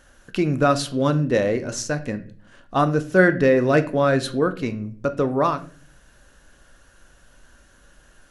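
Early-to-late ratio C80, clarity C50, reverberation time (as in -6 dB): 19.5 dB, 15.0 dB, 0.45 s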